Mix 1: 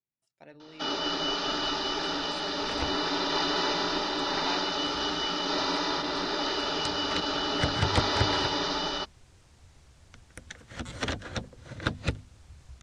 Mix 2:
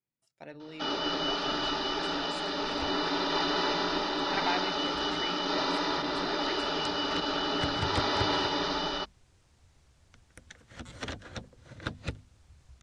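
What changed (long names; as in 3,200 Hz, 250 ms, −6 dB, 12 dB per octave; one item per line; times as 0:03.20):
speech +5.0 dB
first sound: add high-frequency loss of the air 85 metres
second sound −6.5 dB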